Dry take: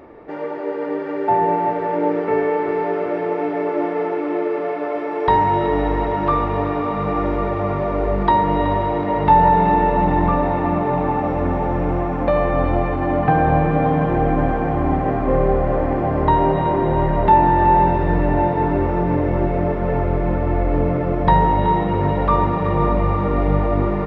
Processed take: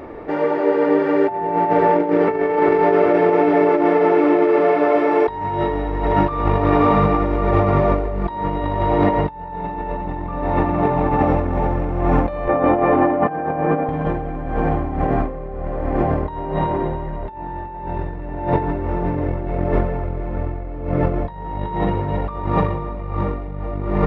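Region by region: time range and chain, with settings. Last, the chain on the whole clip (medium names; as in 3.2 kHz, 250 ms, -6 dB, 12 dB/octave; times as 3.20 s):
12.48–13.89 s: band-pass 290–2600 Hz + tilt EQ -1.5 dB/octave
whole clip: bass shelf 70 Hz +6.5 dB; hum notches 60/120/180 Hz; compressor with a negative ratio -21 dBFS, ratio -0.5; trim +3 dB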